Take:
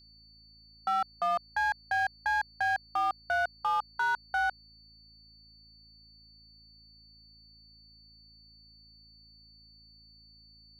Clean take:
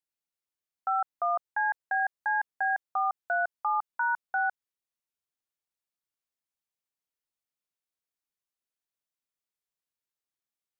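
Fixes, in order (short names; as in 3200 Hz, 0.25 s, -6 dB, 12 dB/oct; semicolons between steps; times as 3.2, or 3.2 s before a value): clip repair -23.5 dBFS; de-hum 54.7 Hz, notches 5; notch 4500 Hz, Q 30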